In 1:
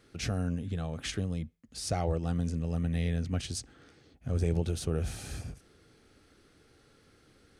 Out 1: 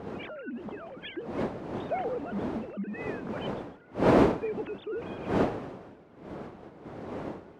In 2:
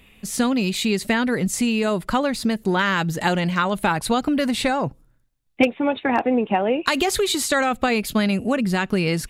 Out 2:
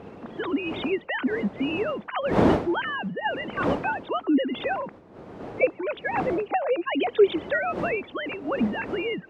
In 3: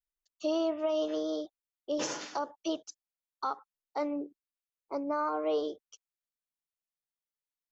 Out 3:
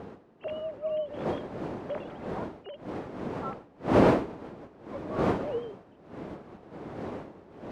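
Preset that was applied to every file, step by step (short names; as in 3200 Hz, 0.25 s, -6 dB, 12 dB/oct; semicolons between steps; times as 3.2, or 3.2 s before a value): sine-wave speech; wind noise 420 Hz -25 dBFS; HPF 230 Hz 6 dB/oct; gain -4.5 dB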